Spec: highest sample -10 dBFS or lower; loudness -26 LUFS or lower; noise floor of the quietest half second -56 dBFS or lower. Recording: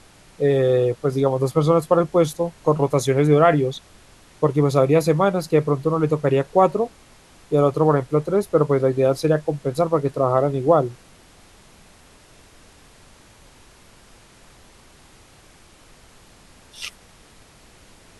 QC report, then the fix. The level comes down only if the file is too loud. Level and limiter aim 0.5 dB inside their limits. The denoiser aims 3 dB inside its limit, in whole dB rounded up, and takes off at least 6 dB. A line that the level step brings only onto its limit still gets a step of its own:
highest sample -3.5 dBFS: fail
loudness -19.5 LUFS: fail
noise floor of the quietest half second -50 dBFS: fail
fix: gain -7 dB

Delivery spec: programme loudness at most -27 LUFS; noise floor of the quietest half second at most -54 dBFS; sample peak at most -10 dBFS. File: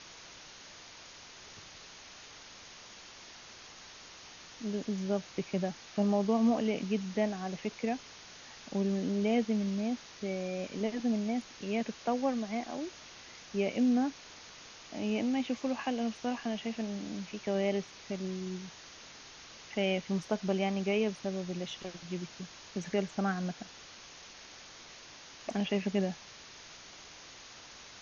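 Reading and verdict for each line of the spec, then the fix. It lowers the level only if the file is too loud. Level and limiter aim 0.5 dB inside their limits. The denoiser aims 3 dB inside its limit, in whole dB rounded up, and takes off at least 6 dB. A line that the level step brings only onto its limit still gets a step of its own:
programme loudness -34.0 LUFS: OK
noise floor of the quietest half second -51 dBFS: fail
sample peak -17.0 dBFS: OK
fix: denoiser 6 dB, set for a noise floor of -51 dBFS

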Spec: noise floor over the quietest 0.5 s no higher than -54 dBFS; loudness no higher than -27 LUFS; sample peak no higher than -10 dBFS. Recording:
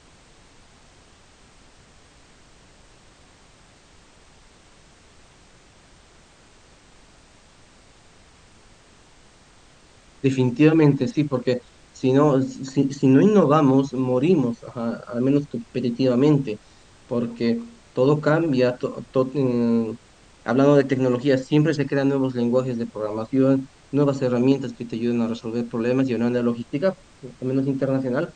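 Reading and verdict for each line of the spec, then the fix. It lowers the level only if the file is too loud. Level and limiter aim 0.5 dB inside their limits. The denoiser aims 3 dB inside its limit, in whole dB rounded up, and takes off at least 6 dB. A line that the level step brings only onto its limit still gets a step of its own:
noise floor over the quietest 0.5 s -52 dBFS: fail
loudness -21.5 LUFS: fail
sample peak -3.5 dBFS: fail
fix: gain -6 dB; limiter -10.5 dBFS

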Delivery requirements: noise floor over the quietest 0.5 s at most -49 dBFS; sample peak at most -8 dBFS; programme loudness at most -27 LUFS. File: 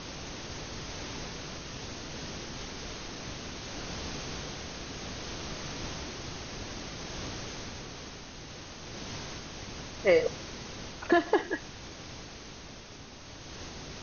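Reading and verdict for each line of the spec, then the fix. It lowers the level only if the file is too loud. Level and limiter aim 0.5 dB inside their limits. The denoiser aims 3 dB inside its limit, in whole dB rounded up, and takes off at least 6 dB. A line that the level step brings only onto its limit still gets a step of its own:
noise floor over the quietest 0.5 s -47 dBFS: fail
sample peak -10.5 dBFS: OK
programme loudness -36.0 LUFS: OK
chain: denoiser 6 dB, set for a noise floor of -47 dBFS

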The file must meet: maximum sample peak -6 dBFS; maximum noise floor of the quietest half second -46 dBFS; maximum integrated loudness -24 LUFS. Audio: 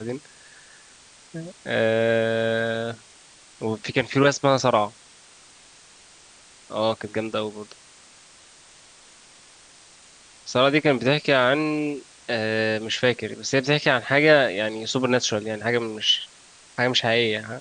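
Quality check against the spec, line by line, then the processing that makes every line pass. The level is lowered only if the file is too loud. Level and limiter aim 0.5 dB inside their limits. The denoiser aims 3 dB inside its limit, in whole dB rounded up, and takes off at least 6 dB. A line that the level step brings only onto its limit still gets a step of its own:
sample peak -4.0 dBFS: fail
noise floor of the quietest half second -51 dBFS: OK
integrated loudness -22.5 LUFS: fail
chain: gain -2 dB; limiter -6.5 dBFS

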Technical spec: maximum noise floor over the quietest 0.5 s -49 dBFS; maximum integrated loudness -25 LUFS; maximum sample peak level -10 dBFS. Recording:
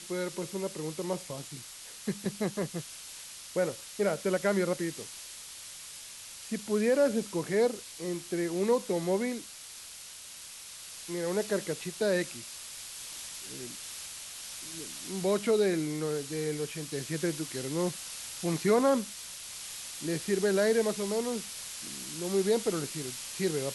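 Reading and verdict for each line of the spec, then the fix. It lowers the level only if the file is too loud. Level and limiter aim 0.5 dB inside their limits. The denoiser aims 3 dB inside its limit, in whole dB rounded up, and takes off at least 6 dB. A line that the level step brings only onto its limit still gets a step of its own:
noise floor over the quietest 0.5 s -47 dBFS: fail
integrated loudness -32.0 LUFS: OK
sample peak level -14.0 dBFS: OK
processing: denoiser 6 dB, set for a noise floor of -47 dBFS

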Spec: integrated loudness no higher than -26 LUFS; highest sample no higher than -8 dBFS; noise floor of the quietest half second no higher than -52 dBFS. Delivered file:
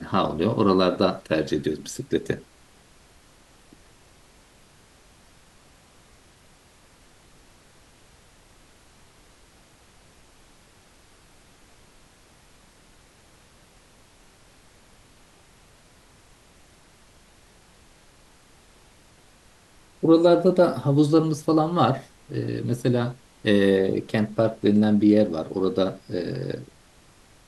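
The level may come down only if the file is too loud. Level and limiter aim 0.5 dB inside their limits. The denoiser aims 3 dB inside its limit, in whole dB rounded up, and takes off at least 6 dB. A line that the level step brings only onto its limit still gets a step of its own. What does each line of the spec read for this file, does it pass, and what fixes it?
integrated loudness -22.5 LUFS: fail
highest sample -5.5 dBFS: fail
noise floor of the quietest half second -55 dBFS: OK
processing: gain -4 dB

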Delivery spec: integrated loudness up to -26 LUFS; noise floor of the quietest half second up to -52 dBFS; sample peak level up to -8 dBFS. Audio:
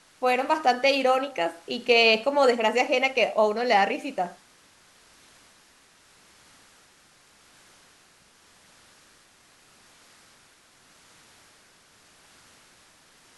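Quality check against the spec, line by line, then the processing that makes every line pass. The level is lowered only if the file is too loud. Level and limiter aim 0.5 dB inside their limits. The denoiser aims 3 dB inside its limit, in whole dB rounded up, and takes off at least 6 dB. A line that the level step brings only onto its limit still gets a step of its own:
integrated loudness -22.5 LUFS: fail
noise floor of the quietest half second -58 dBFS: OK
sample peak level -6.5 dBFS: fail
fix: gain -4 dB

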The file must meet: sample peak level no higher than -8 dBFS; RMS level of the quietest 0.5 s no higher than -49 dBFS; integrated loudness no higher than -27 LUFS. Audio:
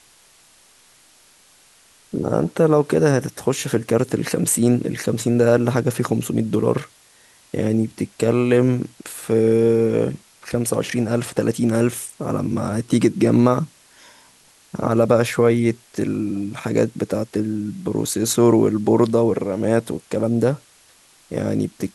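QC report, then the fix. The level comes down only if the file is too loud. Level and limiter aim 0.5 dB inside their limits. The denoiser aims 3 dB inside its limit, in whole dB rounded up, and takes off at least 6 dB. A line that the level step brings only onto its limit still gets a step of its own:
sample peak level -2.5 dBFS: fail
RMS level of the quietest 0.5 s -53 dBFS: OK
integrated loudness -20.0 LUFS: fail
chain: gain -7.5 dB

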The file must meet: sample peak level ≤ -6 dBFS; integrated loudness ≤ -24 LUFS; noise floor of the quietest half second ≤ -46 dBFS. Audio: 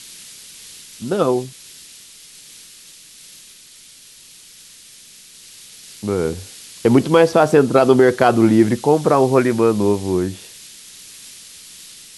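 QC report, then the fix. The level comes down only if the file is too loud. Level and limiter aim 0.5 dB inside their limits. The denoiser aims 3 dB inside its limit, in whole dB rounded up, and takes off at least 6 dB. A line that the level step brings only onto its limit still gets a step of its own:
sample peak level -1.5 dBFS: fail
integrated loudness -16.0 LUFS: fail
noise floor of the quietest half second -44 dBFS: fail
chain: gain -8.5 dB

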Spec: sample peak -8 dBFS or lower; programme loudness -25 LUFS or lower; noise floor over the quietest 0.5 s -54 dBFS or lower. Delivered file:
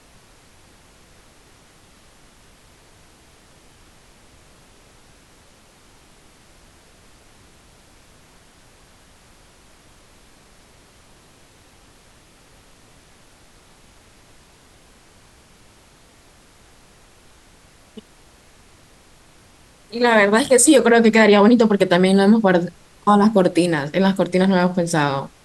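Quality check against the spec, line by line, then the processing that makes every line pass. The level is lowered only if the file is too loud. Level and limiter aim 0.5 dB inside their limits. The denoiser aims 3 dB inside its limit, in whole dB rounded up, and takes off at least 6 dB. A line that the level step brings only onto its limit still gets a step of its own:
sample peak -3.5 dBFS: fail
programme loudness -15.5 LUFS: fail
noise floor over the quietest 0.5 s -51 dBFS: fail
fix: gain -10 dB

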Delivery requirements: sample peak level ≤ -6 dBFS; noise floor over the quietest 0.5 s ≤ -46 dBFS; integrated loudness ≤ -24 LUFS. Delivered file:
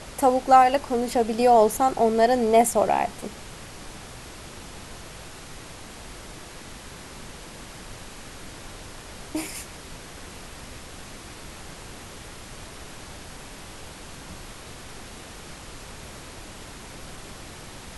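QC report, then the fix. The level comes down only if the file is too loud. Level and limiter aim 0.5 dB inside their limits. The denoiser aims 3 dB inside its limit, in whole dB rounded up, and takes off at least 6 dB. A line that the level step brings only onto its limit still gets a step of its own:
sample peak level -5.0 dBFS: fail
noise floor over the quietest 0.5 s -41 dBFS: fail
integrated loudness -21.0 LUFS: fail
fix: denoiser 6 dB, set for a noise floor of -41 dBFS; gain -3.5 dB

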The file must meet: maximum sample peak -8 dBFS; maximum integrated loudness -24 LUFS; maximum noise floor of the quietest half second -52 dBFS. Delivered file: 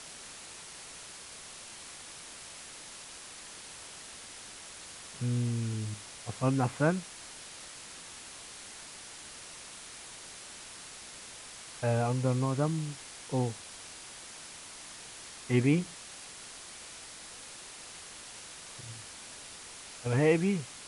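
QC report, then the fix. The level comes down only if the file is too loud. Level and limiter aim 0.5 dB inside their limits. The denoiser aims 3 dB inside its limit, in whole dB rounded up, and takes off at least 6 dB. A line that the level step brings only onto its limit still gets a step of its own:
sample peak -12.5 dBFS: OK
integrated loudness -36.0 LUFS: OK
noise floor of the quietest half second -47 dBFS: fail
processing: denoiser 8 dB, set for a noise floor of -47 dBFS

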